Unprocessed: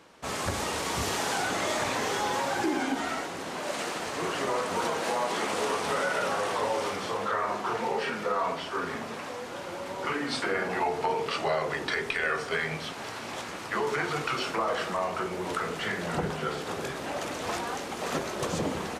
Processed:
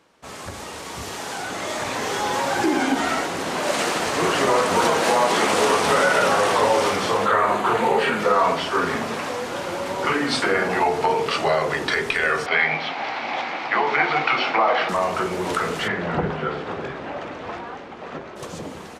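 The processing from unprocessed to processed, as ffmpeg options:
ffmpeg -i in.wav -filter_complex "[0:a]asettb=1/sr,asplit=3[link_01][link_02][link_03];[link_01]atrim=end=7.264[link_04];[link_02]atrim=start=7.26:end=8.2,asetpts=PTS-STARTPTS,afade=type=in:duration=0.004:curve=qsin,afade=type=out:start_time=0.936:duration=0.004:curve=qsin,equalizer=frequency=5400:width=3.8:gain=-12[link_05];[link_03]atrim=start=8.196[link_06];[link_04][link_05]acrossfade=duration=0.004:curve1=hsin:curve2=qsin[link_07];[link_07][link_06]acrossfade=duration=0.004:curve1=qsin:curve2=hsin,asettb=1/sr,asplit=3[link_08][link_09][link_10];[link_08]atrim=end=12.464[link_11];[link_09]atrim=start=12.46:end=14.89,asetpts=PTS-STARTPTS,afade=type=in:duration=0.004:curve=qsin,afade=type=out:start_time=2.426:duration=0.004:curve=qsin,highpass=frequency=160:width=0.5412,highpass=frequency=160:width=1.3066,equalizer=frequency=190:width_type=q:width=4:gain=-9,equalizer=frequency=410:width_type=q:width=4:gain=-6,equalizer=frequency=780:width_type=q:width=4:gain=10,equalizer=frequency=2200:width_type=q:width=4:gain=8,lowpass=frequency=4500:width=0.5412,lowpass=frequency=4500:width=1.3066[link_12];[link_10]atrim=start=14.886[link_13];[link_11][link_12]acrossfade=duration=0.004:curve1=hsin:curve2=qsin[link_14];[link_14][link_13]acrossfade=duration=0.004:curve1=qsin:curve2=hsin,asplit=3[link_15][link_16][link_17];[link_15]afade=type=out:start_time=15.87:duration=0.02[link_18];[link_16]lowpass=2600,afade=type=in:start_time=15.87:duration=0.02,afade=type=out:start_time=18.35:duration=0.02[link_19];[link_17]afade=type=in:start_time=18.35:duration=0.02[link_20];[link_18][link_19][link_20]amix=inputs=3:normalize=0,dynaudnorm=framelen=230:gausssize=21:maxgain=16.5dB,volume=-4dB" out.wav

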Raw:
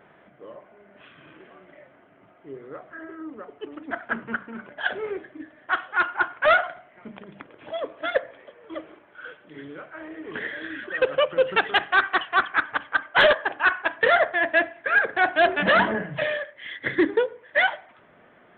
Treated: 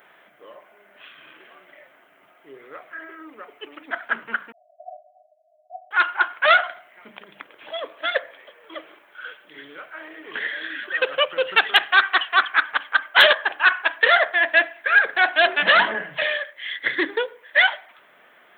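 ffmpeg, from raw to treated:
ffmpeg -i in.wav -filter_complex "[0:a]asettb=1/sr,asplit=3[link_01][link_02][link_03];[link_01]atrim=end=2.594[link_04];[link_02]atrim=start=2.59:end=3.86,asetpts=PTS-STARTPTS,afade=type=in:duration=0.004:curve=qsin,afade=type=out:start_time=1.266:duration=0.004:curve=qsin,equalizer=frequency=2300:width=3.5:gain=6[link_05];[link_03]atrim=start=3.856[link_06];[link_04][link_05]acrossfade=duration=0.004:curve1=hsin:curve2=qsin[link_07];[link_07][link_06]acrossfade=duration=0.004:curve1=qsin:curve2=hsin,asettb=1/sr,asplit=3[link_08][link_09][link_10];[link_08]atrim=end=4.524[link_11];[link_09]atrim=start=4.52:end=5.91,asetpts=PTS-STARTPTS,afade=type=in:duration=0.004:curve=qsin,afade=type=out:start_time=1.386:duration=0.004:curve=qsin,asuperpass=centerf=670:order=20:qfactor=4.4[link_12];[link_10]atrim=start=5.906[link_13];[link_11][link_12]acrossfade=duration=0.004:curve1=hsin:curve2=qsin[link_14];[link_14][link_13]acrossfade=duration=0.004:curve1=qsin:curve2=hsin,highpass=frequency=1000:poles=1,aemphasis=mode=production:type=75fm,volume=4.5dB" out.wav

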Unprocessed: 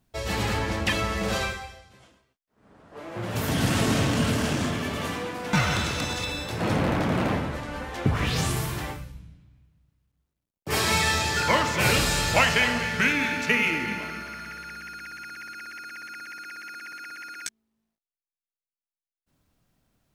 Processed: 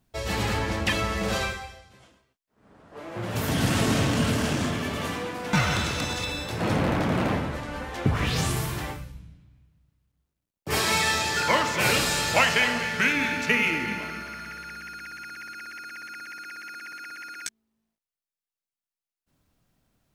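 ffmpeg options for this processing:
ffmpeg -i in.wav -filter_complex "[0:a]asettb=1/sr,asplit=3[link_01][link_02][link_03];[link_01]atrim=end=10.804[link_04];[link_02]atrim=start=10.8:end=13.16,asetpts=PTS-STARTPTS,afade=type=in:duration=0.004:curve=qsin,afade=type=out:start_time=2.356:duration=0.004:curve=qsin,highpass=frequency=180:poles=1[link_05];[link_03]atrim=start=13.156[link_06];[link_04][link_05]acrossfade=duration=0.004:curve1=hsin:curve2=qsin[link_07];[link_07][link_06]acrossfade=duration=0.004:curve1=qsin:curve2=hsin" out.wav

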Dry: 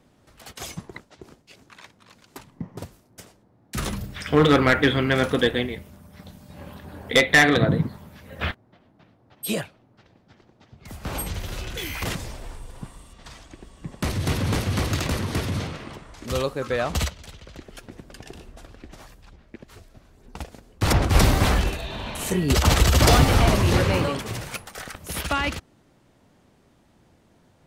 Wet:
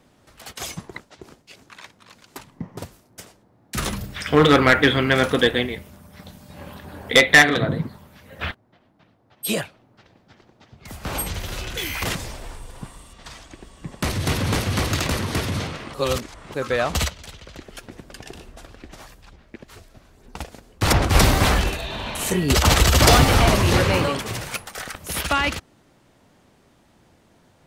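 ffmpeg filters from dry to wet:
ffmpeg -i in.wav -filter_complex "[0:a]asettb=1/sr,asplit=3[link_01][link_02][link_03];[link_01]atrim=end=7.424[link_04];[link_02]atrim=start=7.42:end=9.45,asetpts=PTS-STARTPTS,afade=type=in:duration=0.004:curve=qsin,afade=type=out:start_time=2.026:duration=0.004:curve=qsin,flanger=delay=0.2:depth=8.4:regen=-63:speed=1.8:shape=sinusoidal[link_05];[link_03]atrim=start=9.446[link_06];[link_04][link_05]acrossfade=duration=0.004:curve1=hsin:curve2=qsin[link_07];[link_07][link_06]acrossfade=duration=0.004:curve1=qsin:curve2=hsin,asplit=3[link_08][link_09][link_10];[link_08]atrim=end=15.942[link_11];[link_09]atrim=start=15.938:end=16.542,asetpts=PTS-STARTPTS,areverse[link_12];[link_10]atrim=start=16.538[link_13];[link_11][link_12]acrossfade=duration=0.004:curve1=hsin:curve2=hsin[link_14];[link_14][link_13]acrossfade=duration=0.004:curve1=hsin:curve2=hsin,lowshelf=frequency=490:gain=-4,volume=4.5dB" out.wav

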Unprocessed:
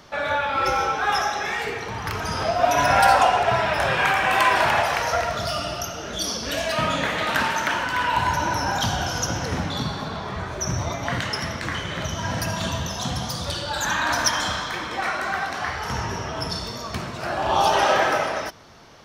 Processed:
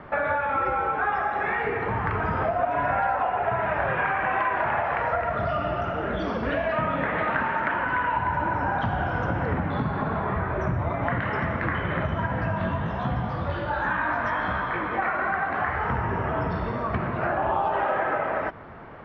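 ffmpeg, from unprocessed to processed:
ffmpeg -i in.wav -filter_complex "[0:a]asplit=3[link_01][link_02][link_03];[link_01]afade=type=out:start_time=12.26:duration=0.02[link_04];[link_02]flanger=delay=15:depth=6.6:speed=1.3,afade=type=in:start_time=12.26:duration=0.02,afade=type=out:start_time=14.98:duration=0.02[link_05];[link_03]afade=type=in:start_time=14.98:duration=0.02[link_06];[link_04][link_05][link_06]amix=inputs=3:normalize=0,lowpass=frequency=2000:width=0.5412,lowpass=frequency=2000:width=1.3066,acompressor=threshold=-29dB:ratio=6,volume=6.5dB" out.wav

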